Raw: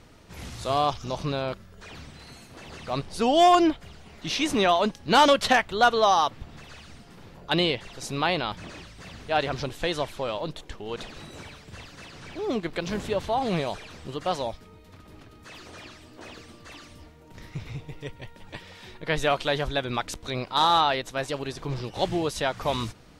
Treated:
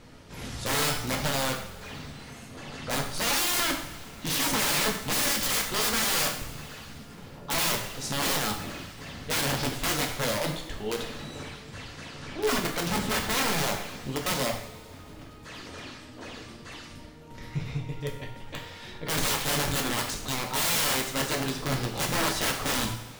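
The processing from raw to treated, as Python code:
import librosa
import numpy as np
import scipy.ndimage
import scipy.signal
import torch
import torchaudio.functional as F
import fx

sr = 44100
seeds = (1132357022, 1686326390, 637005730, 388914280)

y = (np.mod(10.0 ** (23.5 / 20.0) * x + 1.0, 2.0) - 1.0) / 10.0 ** (23.5 / 20.0)
y = fx.rev_double_slope(y, sr, seeds[0], early_s=0.61, late_s=2.8, knee_db=-17, drr_db=1.0)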